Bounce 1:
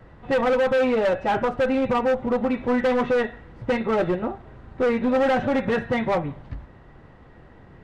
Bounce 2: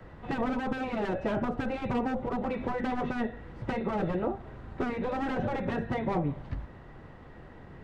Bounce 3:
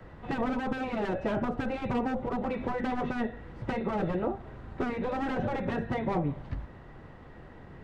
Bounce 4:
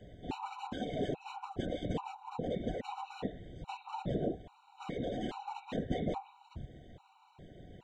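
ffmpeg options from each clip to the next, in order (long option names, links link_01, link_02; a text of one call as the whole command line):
ffmpeg -i in.wav -filter_complex "[0:a]afftfilt=real='re*lt(hypot(re,im),0.501)':imag='im*lt(hypot(re,im),0.501)':win_size=1024:overlap=0.75,bandreject=frequency=60:width_type=h:width=6,bandreject=frequency=120:width_type=h:width=6,acrossover=split=190|740[link_01][link_02][link_03];[link_03]acompressor=threshold=-40dB:ratio=6[link_04];[link_01][link_02][link_04]amix=inputs=3:normalize=0" out.wav
ffmpeg -i in.wav -af anull out.wav
ffmpeg -i in.wav -af "afftfilt=real='hypot(re,im)*cos(2*PI*random(0))':imag='hypot(re,im)*sin(2*PI*random(1))':win_size=512:overlap=0.75,superequalizer=10b=0.355:11b=0.398:13b=2.51:15b=2.51,afftfilt=real='re*gt(sin(2*PI*1.2*pts/sr)*(1-2*mod(floor(b*sr/1024/750),2)),0)':imag='im*gt(sin(2*PI*1.2*pts/sr)*(1-2*mod(floor(b*sr/1024/750),2)),0)':win_size=1024:overlap=0.75,volume=2.5dB" out.wav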